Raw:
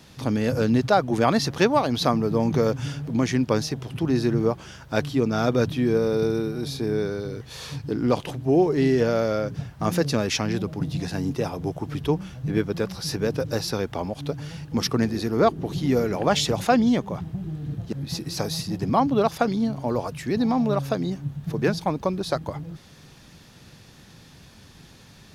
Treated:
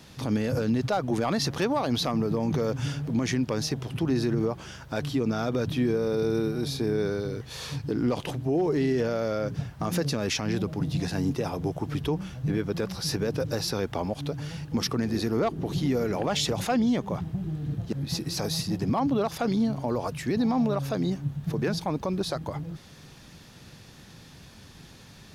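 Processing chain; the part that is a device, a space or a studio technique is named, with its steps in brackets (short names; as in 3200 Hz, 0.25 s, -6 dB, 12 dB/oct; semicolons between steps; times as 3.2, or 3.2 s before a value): clipper into limiter (hard clip -10 dBFS, distortion -27 dB; limiter -17.5 dBFS, peak gain reduction 7.5 dB)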